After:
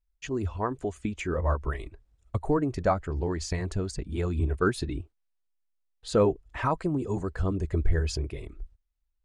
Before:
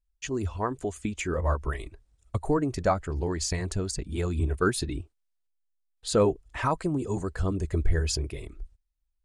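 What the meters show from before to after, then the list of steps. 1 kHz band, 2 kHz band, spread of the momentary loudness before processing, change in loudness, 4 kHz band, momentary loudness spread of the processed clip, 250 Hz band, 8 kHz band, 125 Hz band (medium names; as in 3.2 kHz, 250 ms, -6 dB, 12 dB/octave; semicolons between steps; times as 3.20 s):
-0.5 dB, -1.5 dB, 11 LU, -0.5 dB, -5.0 dB, 11 LU, 0.0 dB, -8.0 dB, 0.0 dB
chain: low-pass 3 kHz 6 dB/octave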